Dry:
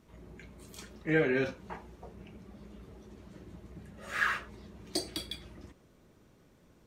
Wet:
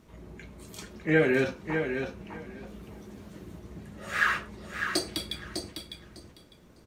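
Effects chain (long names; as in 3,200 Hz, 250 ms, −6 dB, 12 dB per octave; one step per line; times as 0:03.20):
0:02.67–0:03.59: high-shelf EQ 9,200 Hz +9.5 dB
repeating echo 603 ms, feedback 17%, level −7 dB
level +4.5 dB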